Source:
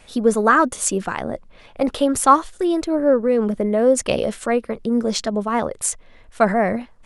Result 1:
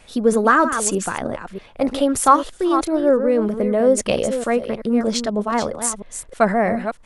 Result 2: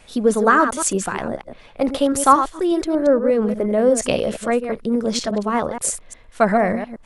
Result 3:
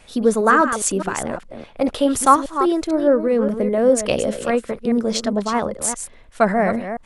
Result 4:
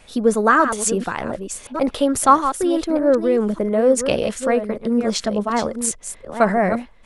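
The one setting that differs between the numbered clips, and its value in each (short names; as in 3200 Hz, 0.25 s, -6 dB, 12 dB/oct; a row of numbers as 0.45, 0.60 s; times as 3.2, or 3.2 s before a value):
reverse delay, time: 0.317, 0.118, 0.205, 0.598 s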